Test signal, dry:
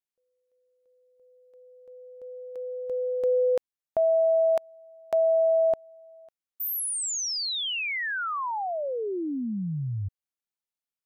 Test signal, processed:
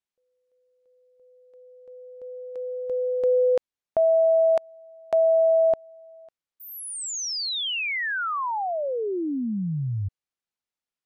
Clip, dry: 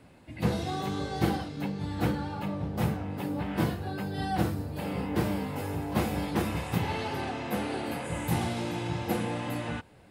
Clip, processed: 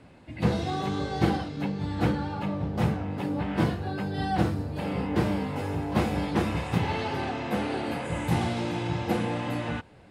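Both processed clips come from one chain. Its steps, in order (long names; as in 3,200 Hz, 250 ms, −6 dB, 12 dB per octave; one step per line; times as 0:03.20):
high-frequency loss of the air 51 metres
level +3 dB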